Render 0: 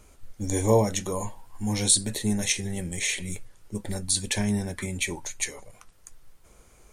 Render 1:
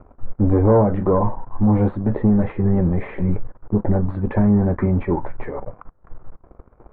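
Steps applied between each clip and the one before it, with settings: compression 2.5:1, threshold -28 dBFS, peak gain reduction 9 dB; waveshaping leveller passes 3; inverse Chebyshev low-pass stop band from 5.3 kHz, stop band 70 dB; trim +5.5 dB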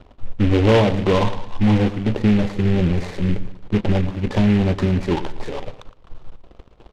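feedback delay 114 ms, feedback 37%, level -14 dB; delay time shaken by noise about 2 kHz, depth 0.074 ms

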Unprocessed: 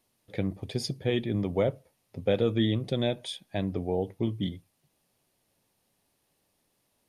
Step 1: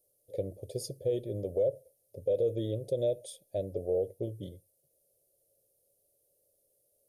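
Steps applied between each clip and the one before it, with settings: FFT filter 120 Hz 0 dB, 230 Hz -11 dB, 560 Hz +15 dB, 900 Hz -18 dB, 1.5 kHz -24 dB, 11 kHz +12 dB; peak limiter -14 dBFS, peak gain reduction 9 dB; trim -7 dB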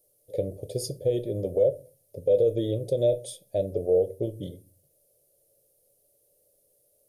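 simulated room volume 140 m³, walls furnished, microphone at 0.41 m; trim +6 dB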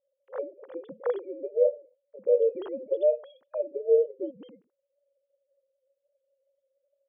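formants replaced by sine waves; trim -1.5 dB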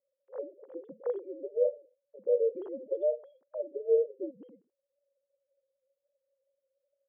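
band-pass filter 330 Hz, Q 0.76; trim -3 dB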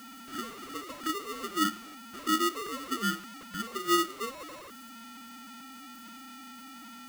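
jump at every zero crossing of -41 dBFS; dynamic bell 840 Hz, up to -5 dB, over -41 dBFS, Q 1.4; polarity switched at an audio rate 800 Hz

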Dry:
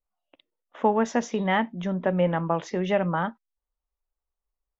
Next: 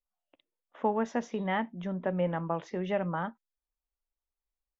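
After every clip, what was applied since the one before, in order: treble shelf 5.4 kHz -10.5 dB; trim -6.5 dB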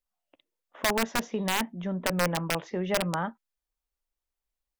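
integer overflow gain 20.5 dB; trim +3 dB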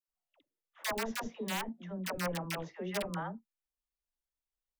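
phase dispersion lows, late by 83 ms, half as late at 630 Hz; trim -8.5 dB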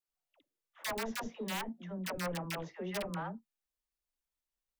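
saturation -29.5 dBFS, distortion -17 dB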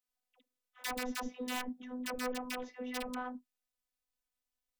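robot voice 251 Hz; trim +2 dB

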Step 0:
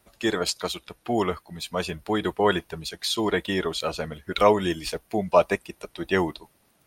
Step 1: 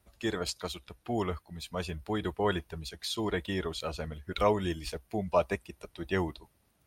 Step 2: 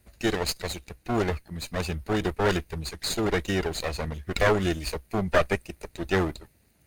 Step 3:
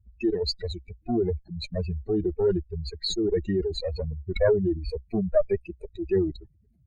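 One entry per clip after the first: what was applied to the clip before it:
peaking EQ 64 Hz +13 dB 1.7 oct; trim -8.5 dB
comb filter that takes the minimum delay 0.46 ms; trim +7.5 dB
spectral contrast enhancement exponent 3.1; trim +1.5 dB

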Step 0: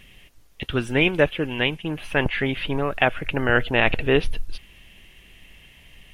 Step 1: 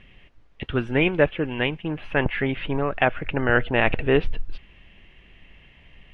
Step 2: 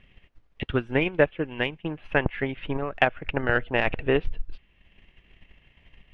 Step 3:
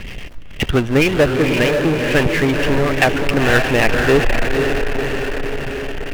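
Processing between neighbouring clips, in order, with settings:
low-pass 2.4 kHz 12 dB/octave
transient shaper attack +8 dB, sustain -5 dB; trim -6.5 dB
rotary cabinet horn 7.5 Hz; echo that smears into a reverb 504 ms, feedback 48%, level -8 dB; power-law waveshaper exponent 0.5; trim +3 dB

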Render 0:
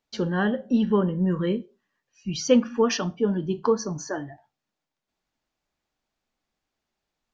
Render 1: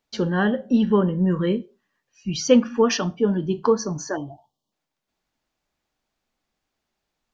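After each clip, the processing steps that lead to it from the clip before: spectral selection erased 4.16–4.72 s, 1.2–2.8 kHz; trim +3 dB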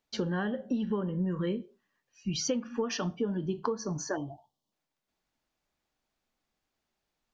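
compression 16:1, threshold -23 dBFS, peak gain reduction 14.5 dB; trim -4 dB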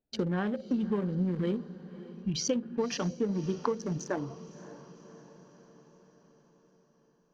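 local Wiener filter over 41 samples; echo that smears into a reverb 571 ms, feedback 56%, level -16 dB; trim +1.5 dB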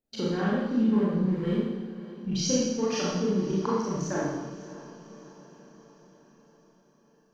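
Schroeder reverb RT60 1.1 s, combs from 28 ms, DRR -7 dB; trim -3 dB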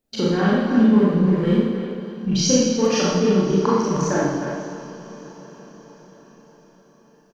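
speakerphone echo 310 ms, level -7 dB; trim +8.5 dB

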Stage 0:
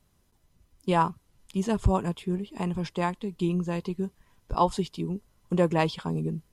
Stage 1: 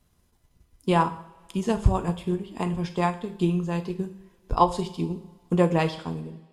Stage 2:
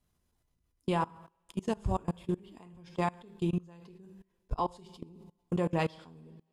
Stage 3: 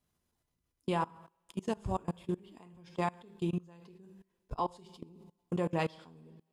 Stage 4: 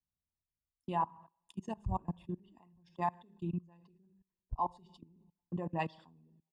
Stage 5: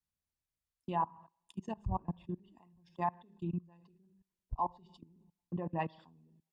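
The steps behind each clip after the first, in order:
fade out at the end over 0.67 s; two-slope reverb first 0.57 s, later 2 s, from -18 dB, DRR 5.5 dB; transient shaper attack +4 dB, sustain -2 dB
level held to a coarse grid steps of 24 dB; trim -4 dB
bass shelf 73 Hz -10 dB; trim -1.5 dB
resonances exaggerated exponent 1.5; comb 1.1 ms, depth 63%; three bands expanded up and down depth 40%; trim -5 dB
low-pass that closes with the level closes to 2.3 kHz, closed at -31.5 dBFS

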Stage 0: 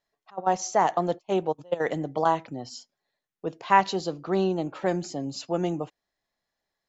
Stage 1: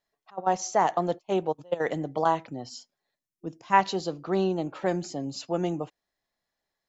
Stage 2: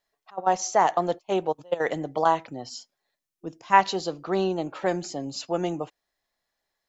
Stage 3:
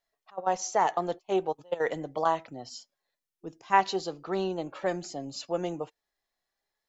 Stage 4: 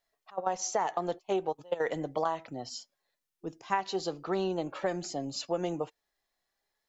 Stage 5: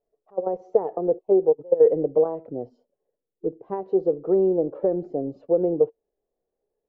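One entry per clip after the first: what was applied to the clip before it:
time-frequency box 3.15–3.73 s, 360–4900 Hz -10 dB; trim -1 dB
peaking EQ 160 Hz -5.5 dB 2.4 oct; trim +3.5 dB
flange 0.39 Hz, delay 1.4 ms, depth 1.3 ms, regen +74%
compression 6:1, threshold -28 dBFS, peak gain reduction 12 dB; trim +2 dB
resonant low-pass 460 Hz, resonance Q 4.9; trim +3.5 dB

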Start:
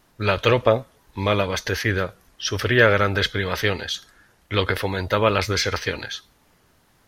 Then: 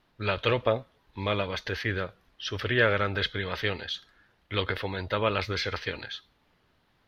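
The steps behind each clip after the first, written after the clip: resonant high shelf 5.3 kHz -11 dB, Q 1.5; trim -8 dB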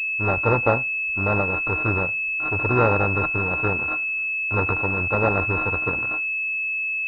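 sorted samples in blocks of 32 samples; class-D stage that switches slowly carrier 2.6 kHz; trim +7.5 dB

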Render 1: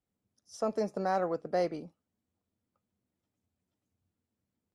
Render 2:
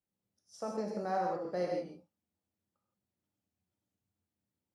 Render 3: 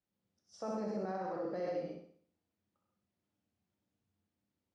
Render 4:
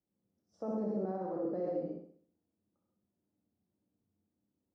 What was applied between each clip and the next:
high-pass 57 Hz; gated-style reverb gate 190 ms flat, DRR -1 dB; trim -7.5 dB
peak limiter -33.5 dBFS, peak gain reduction 11 dB; distance through air 95 m; on a send: flutter echo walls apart 10.9 m, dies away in 0.54 s; on the sum: trim +2 dB
FFT filter 100 Hz 0 dB, 310 Hz +6 dB, 1.1 kHz -5 dB, 2.4 kHz -16 dB

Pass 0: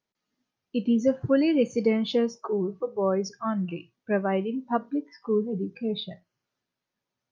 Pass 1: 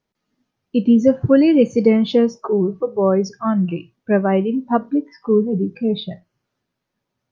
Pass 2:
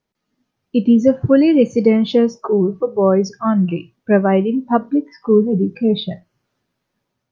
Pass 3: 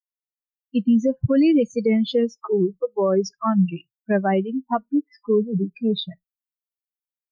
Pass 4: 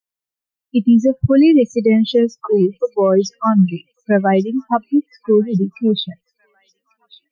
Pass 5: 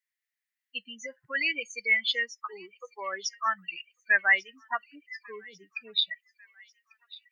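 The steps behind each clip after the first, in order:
tilt EQ -1.5 dB/octave; trim +7 dB
level rider gain up to 4.5 dB
expander on every frequency bin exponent 2; peak limiter -11 dBFS, peak gain reduction 7.5 dB
feedback echo behind a high-pass 1145 ms, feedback 52%, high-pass 2.6 kHz, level -20 dB; trim +6 dB
resonant high-pass 1.9 kHz, resonance Q 7.7; trim -4.5 dB

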